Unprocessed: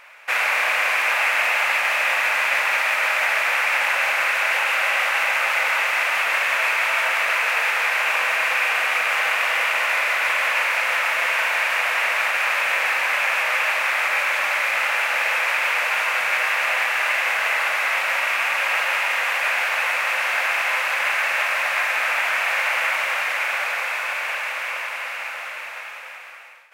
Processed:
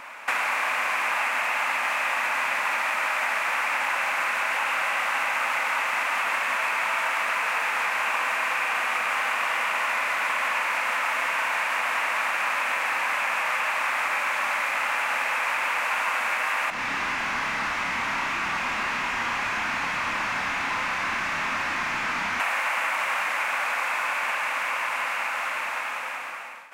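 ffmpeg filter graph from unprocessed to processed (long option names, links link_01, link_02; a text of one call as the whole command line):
ffmpeg -i in.wav -filter_complex "[0:a]asettb=1/sr,asplit=3[link_01][link_02][link_03];[link_01]atrim=end=16.704[link_04];[link_02]atrim=start=16.7:end=22.4,asetpts=PTS-STARTPTS,afade=type=in:duration=0.004:curve=qsin,afade=type=out:start_time=5.696:duration=0.004:curve=qsin,volume=29dB,asoftclip=hard,volume=-29dB,asplit=2[link_05][link_06];[link_06]adelay=29,volume=-4dB[link_07];[link_05][link_07]amix=inputs=2:normalize=0,atrim=end_sample=251370,acrossover=split=4900[link_08][link_09];[link_09]acompressor=threshold=-53dB:ratio=4:attack=1:release=60[link_10];[link_08][link_10]amix=inputs=2:normalize=0[link_11];[link_03]atrim=start=22.396[link_12];[link_04][link_11]acrossfade=duration=0.004:curve1=hsin:curve2=qsin[link_13];[link_13][link_12]acrossfade=duration=0.004:curve1=qsin:curve2=hsin,lowshelf=frequency=400:gain=10,acrossover=split=810|3300[link_14][link_15][link_16];[link_14]acompressor=threshold=-46dB:ratio=4[link_17];[link_15]acompressor=threshold=-31dB:ratio=4[link_18];[link_16]acompressor=threshold=-44dB:ratio=4[link_19];[link_17][link_18][link_19]amix=inputs=3:normalize=0,equalizer=frequency=250:width_type=o:width=1:gain=11,equalizer=frequency=500:width_type=o:width=1:gain=-3,equalizer=frequency=1000:width_type=o:width=1:gain=8,equalizer=frequency=8000:width_type=o:width=1:gain=5,volume=1.5dB" out.wav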